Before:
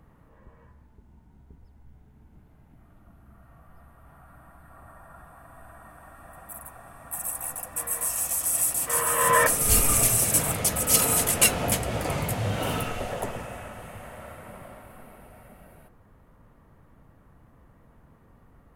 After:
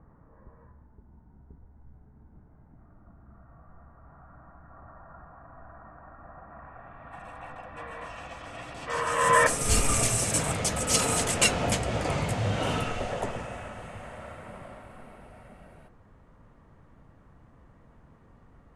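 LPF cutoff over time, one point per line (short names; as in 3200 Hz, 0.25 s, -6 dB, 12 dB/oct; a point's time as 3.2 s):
LPF 24 dB/oct
6.47 s 1600 Hz
7.09 s 3400 Hz
8.65 s 3400 Hz
9.34 s 8200 Hz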